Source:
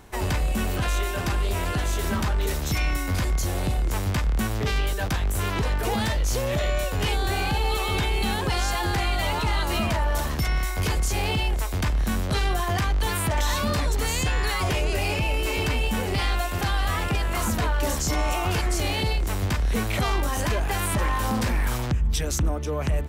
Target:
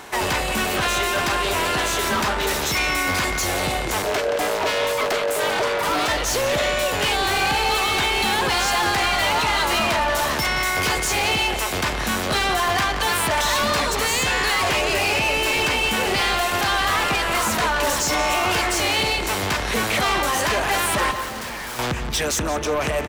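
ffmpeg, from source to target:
-filter_complex "[0:a]lowshelf=f=130:g=-6.5,asplit=3[s0][s1][s2];[s0]afade=t=out:st=4.02:d=0.02[s3];[s1]aeval=exprs='val(0)*sin(2*PI*520*n/s)':c=same,afade=t=in:st=4.02:d=0.02,afade=t=out:st=6.07:d=0.02[s4];[s2]afade=t=in:st=6.07:d=0.02[s5];[s3][s4][s5]amix=inputs=3:normalize=0,asplit=2[s6][s7];[s7]highpass=f=720:p=1,volume=10,asoftclip=type=tanh:threshold=0.158[s8];[s6][s8]amix=inputs=2:normalize=0,lowpass=f=6900:p=1,volume=0.501,asettb=1/sr,asplit=3[s9][s10][s11];[s9]atrim=end=21.114[s12];[s10]atrim=start=21.11:end=21.79,asetpts=PTS-STARTPTS,afade=t=in:d=0.004:c=qsin,afade=t=out:st=0.676:d=0.004:c=qsin,volume=42.2,asoftclip=hard,volume=0.0237[s13];[s11]atrim=start=21.786[s14];[s12][s13]acrossfade=d=0.004:c1=hsin:c2=qsin[s15];[s15][s14]acrossfade=d=0.004:c1=qsin:c2=hsin,asplit=2[s16][s17];[s17]adelay=176,lowpass=f=4800:p=1,volume=0.335,asplit=2[s18][s19];[s19]adelay=176,lowpass=f=4800:p=1,volume=0.53,asplit=2[s20][s21];[s21]adelay=176,lowpass=f=4800:p=1,volume=0.53,asplit=2[s22][s23];[s23]adelay=176,lowpass=f=4800:p=1,volume=0.53,asplit=2[s24][s25];[s25]adelay=176,lowpass=f=4800:p=1,volume=0.53,asplit=2[s26][s27];[s27]adelay=176,lowpass=f=4800:p=1,volume=0.53[s28];[s16][s18][s20][s22][s24][s26][s28]amix=inputs=7:normalize=0,volume=1.19"

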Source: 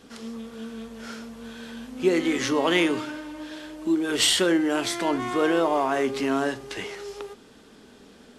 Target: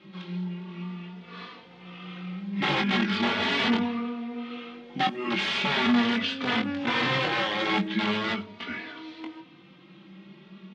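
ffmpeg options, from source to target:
-filter_complex "[0:a]asetrate=34398,aresample=44100,aeval=exprs='(mod(8.41*val(0)+1,2)-1)/8.41':c=same,highpass=140,equalizer=f=200:t=q:w=4:g=8,equalizer=f=650:t=q:w=4:g=-3,equalizer=f=2100:t=q:w=4:g=4,equalizer=f=3300:t=q:w=4:g=6,lowpass=f=4000:w=0.5412,lowpass=f=4000:w=1.3066,asplit=2[s0][s1];[s1]adelay=21,volume=0.531[s2];[s0][s2]amix=inputs=2:normalize=0,asplit=2[s3][s4];[s4]adelay=90,highpass=300,lowpass=3400,asoftclip=type=hard:threshold=0.112,volume=0.0398[s5];[s3][s5]amix=inputs=2:normalize=0,asplit=2[s6][s7];[s7]adelay=3.3,afreqshift=0.4[s8];[s6][s8]amix=inputs=2:normalize=1"

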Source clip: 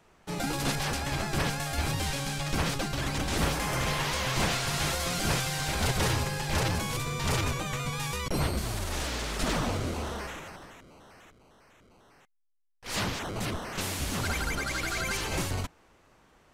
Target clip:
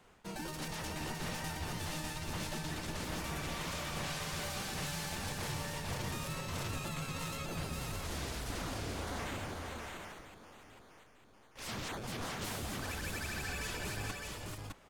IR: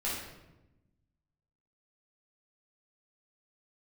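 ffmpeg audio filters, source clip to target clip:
-af "areverse,acompressor=threshold=0.0126:ratio=5,areverse,asetrate=48951,aresample=44100,aecho=1:1:434|608:0.447|0.631,volume=0.841"

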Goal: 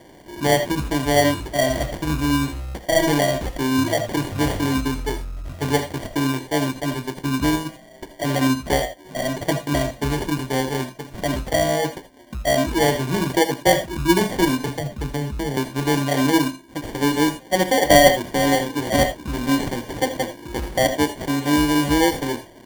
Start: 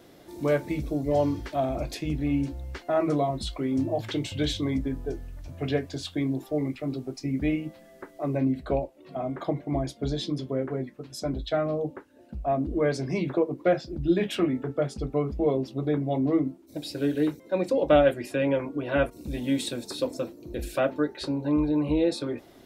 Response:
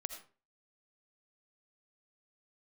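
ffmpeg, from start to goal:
-filter_complex "[0:a]acrusher=samples=34:mix=1:aa=0.000001,asettb=1/sr,asplit=3[s0][s1][s2];[s0]atrim=end=14.684[s3];[s1]atrim=start=14.68:end=15.57,asetpts=PTS-STARTPTS,afade=t=in:d=0.004:c=qsin,afade=t=out:st=0.886:d=0.004:c=qsin,acrossover=split=250[s4][s5];[s5]acompressor=threshold=0.02:ratio=5[s6];[s4][s6]amix=inputs=2:normalize=0[s7];[s2]atrim=start=15.566[s8];[s3][s7]acrossfade=d=0.004:c1=hsin:c2=qsin[s9];[s9][s8]acrossfade=d=0.004:c1=qsin:c2=hsin[s10];[1:a]atrim=start_sample=2205,atrim=end_sample=3969[s11];[s10][s11]afir=irnorm=-1:irlink=0,volume=2.66"

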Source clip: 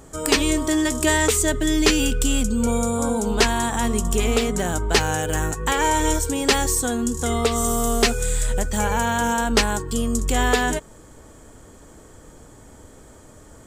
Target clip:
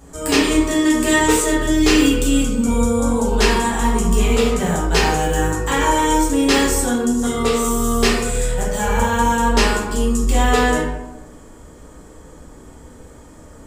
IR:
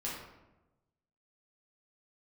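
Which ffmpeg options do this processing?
-filter_complex "[1:a]atrim=start_sample=2205[s0];[0:a][s0]afir=irnorm=-1:irlink=0,volume=1.12"

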